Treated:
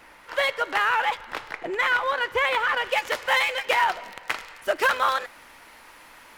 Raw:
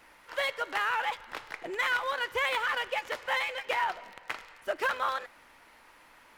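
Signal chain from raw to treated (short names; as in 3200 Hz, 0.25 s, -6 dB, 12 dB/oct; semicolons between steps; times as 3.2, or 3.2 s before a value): high shelf 3800 Hz -3 dB, from 1.51 s -8.5 dB, from 2.85 s +4.5 dB; gain +7.5 dB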